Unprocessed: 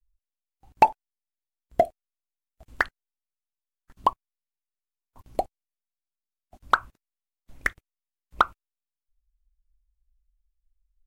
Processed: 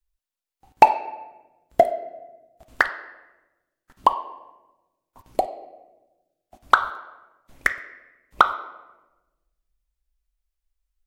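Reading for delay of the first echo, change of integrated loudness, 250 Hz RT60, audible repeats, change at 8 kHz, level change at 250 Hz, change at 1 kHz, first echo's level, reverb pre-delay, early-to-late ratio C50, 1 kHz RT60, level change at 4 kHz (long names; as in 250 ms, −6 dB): no echo audible, +4.5 dB, 1.5 s, no echo audible, +5.0 dB, +2.5 dB, +5.0 dB, no echo audible, 12 ms, 11.5 dB, 1.0 s, +5.5 dB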